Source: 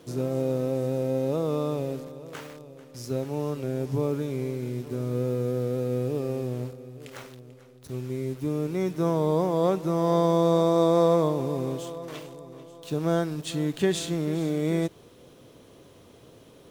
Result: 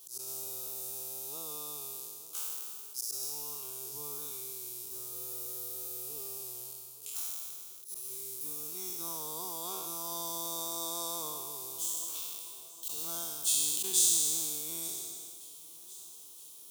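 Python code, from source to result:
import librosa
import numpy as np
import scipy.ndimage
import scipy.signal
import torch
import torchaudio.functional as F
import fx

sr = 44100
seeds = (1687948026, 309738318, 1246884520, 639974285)

y = fx.spec_trails(x, sr, decay_s=1.81)
y = fx.high_shelf(y, sr, hz=6800.0, db=9.0)
y = fx.auto_swell(y, sr, attack_ms=119.0)
y = np.diff(y, prepend=0.0)
y = fx.fixed_phaser(y, sr, hz=370.0, stages=8)
y = fx.echo_feedback(y, sr, ms=970, feedback_pct=60, wet_db=-21)
y = fx.sustainer(y, sr, db_per_s=24.0)
y = F.gain(torch.from_numpy(y), 3.0).numpy()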